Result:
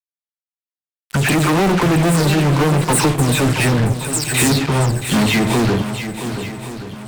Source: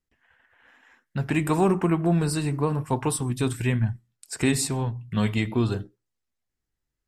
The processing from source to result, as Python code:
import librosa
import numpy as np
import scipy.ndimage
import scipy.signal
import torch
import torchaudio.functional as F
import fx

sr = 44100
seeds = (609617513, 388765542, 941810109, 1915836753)

y = fx.spec_delay(x, sr, highs='early', ms=186)
y = fx.fuzz(y, sr, gain_db=36.0, gate_db=-41.0)
y = fx.echo_swing(y, sr, ms=1124, ratio=1.5, feedback_pct=36, wet_db=-10)